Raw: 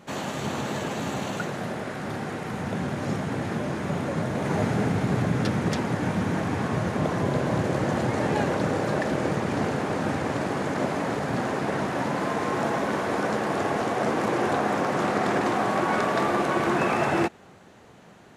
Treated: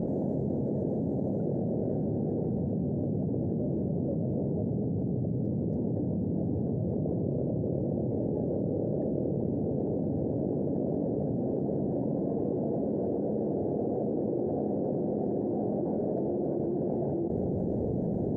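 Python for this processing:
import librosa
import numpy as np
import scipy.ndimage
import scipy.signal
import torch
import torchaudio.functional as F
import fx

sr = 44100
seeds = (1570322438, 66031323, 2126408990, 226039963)

y = scipy.signal.sosfilt(scipy.signal.cheby2(4, 40, 1100.0, 'lowpass', fs=sr, output='sos'), x)
y = fx.env_flatten(y, sr, amount_pct=100)
y = y * 10.0 ** (-8.0 / 20.0)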